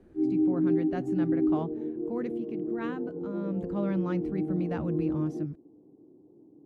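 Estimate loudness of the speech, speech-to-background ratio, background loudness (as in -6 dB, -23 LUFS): -35.0 LUFS, -4.0 dB, -31.0 LUFS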